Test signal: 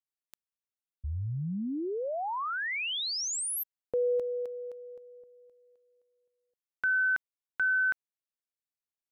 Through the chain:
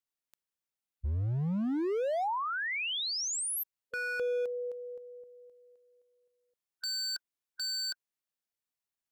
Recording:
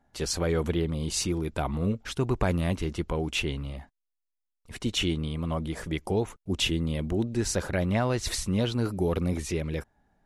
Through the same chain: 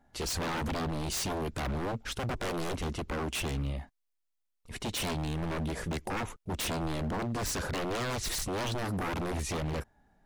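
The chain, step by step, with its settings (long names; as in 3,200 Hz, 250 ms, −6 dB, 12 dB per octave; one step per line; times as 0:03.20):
harmonic and percussive parts rebalanced percussive −4 dB
wave folding −31 dBFS
level +3 dB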